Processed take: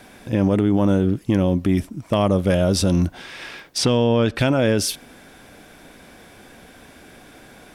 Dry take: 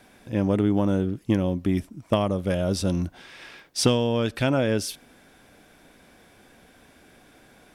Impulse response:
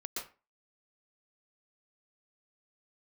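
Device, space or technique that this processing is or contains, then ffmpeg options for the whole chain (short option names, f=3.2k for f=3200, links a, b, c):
clipper into limiter: -filter_complex "[0:a]asettb=1/sr,asplit=3[a][b][c];[a]atrim=end=3.784[d];[b]atrim=start=3.78:end=4.39,asetpts=PTS-STARTPTS,afade=t=in:d=0.004:c=qsin,afade=t=out:st=0.606:d=0.004:c=qsin,aemphasis=mode=reproduction:type=50kf[e];[c]atrim=start=4.386[f];[d][e]acrossfade=d=0.004:c1=hsin:c2=qsin[g];[g][f]acrossfade=d=0.004:c1=qsin:c2=hsin,asoftclip=type=hard:threshold=-10dB,alimiter=limit=-18dB:level=0:latency=1:release=41,volume=8.5dB"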